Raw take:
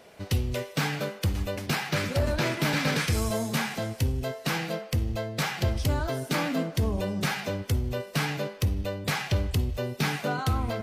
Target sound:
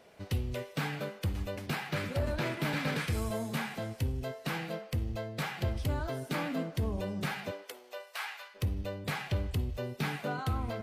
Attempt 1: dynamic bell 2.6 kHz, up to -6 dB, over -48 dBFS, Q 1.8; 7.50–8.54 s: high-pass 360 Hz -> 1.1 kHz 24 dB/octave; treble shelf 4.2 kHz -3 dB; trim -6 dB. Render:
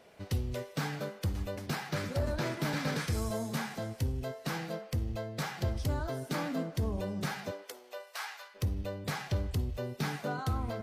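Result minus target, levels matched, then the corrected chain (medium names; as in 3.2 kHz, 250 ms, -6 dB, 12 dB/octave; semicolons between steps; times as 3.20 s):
8 kHz band +3.0 dB
dynamic bell 5.8 kHz, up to -6 dB, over -48 dBFS, Q 1.8; 7.50–8.54 s: high-pass 360 Hz -> 1.1 kHz 24 dB/octave; treble shelf 4.2 kHz -3 dB; trim -6 dB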